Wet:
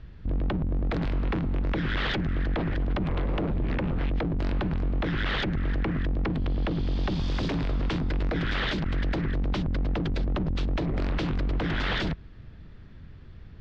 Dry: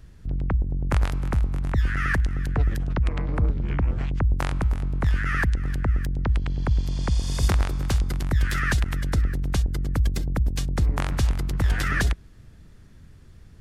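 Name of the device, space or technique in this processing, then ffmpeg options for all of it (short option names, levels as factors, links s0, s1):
synthesiser wavefolder: -af "aeval=exprs='0.0596*(abs(mod(val(0)/0.0596+3,4)-2)-1)':c=same,lowpass=f=4000:w=0.5412,lowpass=f=4000:w=1.3066,volume=1.33"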